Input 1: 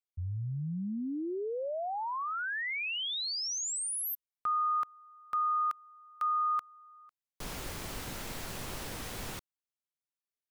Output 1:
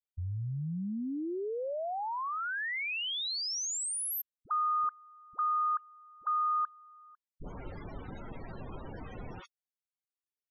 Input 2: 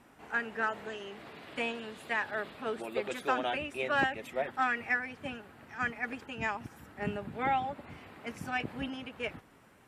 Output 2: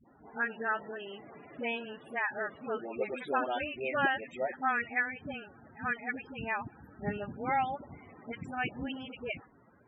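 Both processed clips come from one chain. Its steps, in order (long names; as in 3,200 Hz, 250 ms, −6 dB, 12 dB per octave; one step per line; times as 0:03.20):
all-pass dispersion highs, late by 67 ms, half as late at 530 Hz
spectral peaks only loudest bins 32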